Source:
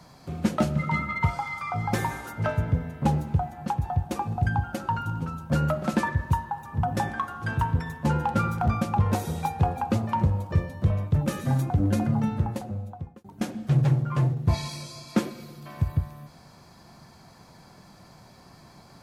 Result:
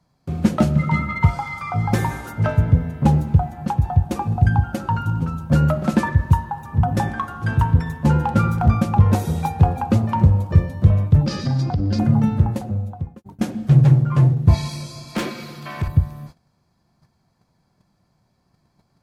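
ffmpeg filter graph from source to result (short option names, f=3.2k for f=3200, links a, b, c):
-filter_complex "[0:a]asettb=1/sr,asplit=3[a][b][c];[a]atrim=end=11.264[d];[b]atrim=start=11.26:end=11.99,asetpts=PTS-STARTPTS,afade=t=in:d=0.004:c=qsin,afade=t=out:st=0.726:d=0.004:c=qsin,acompressor=threshold=-25dB:ratio=5:attack=3.2:release=140:knee=1:detection=peak,lowpass=f=4.9k:t=q:w=11[e];[c]atrim=start=11.986[f];[d][e]acrossfade=d=0.004:c1=hsin:c2=qsin[g];[g][f]acrossfade=d=0.004:c1=qsin:c2=hsin,asettb=1/sr,asplit=3[h][i][j];[h]atrim=end=15.154[k];[i]atrim=start=15.15:end=15.88,asetpts=PTS-STARTPTS,afade=t=in:d=0.004:c=qsin,afade=t=out:st=0.726:d=0.004:c=qsin,highpass=f=140:p=1,equalizer=f=2.2k:w=0.38:g=11,volume=25dB,asoftclip=hard,volume=-25dB[l];[j]atrim=start=15.876[m];[k][l]acrossfade=d=0.004:c1=hsin:c2=qsin[n];[n][m]acrossfade=d=0.004:c1=qsin:c2=hsin,agate=range=-21dB:threshold=-46dB:ratio=16:detection=peak,lowshelf=f=270:g=7.5,volume=3dB"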